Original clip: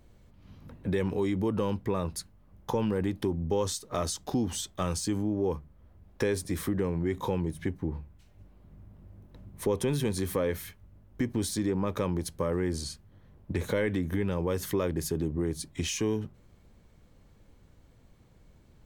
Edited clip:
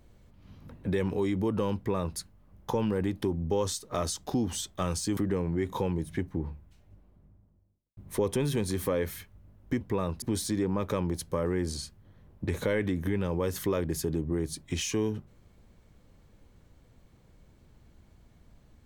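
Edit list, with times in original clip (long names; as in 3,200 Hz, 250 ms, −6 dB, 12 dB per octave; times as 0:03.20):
0:01.77–0:02.18: duplicate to 0:11.29
0:05.17–0:06.65: remove
0:07.96–0:09.45: fade out and dull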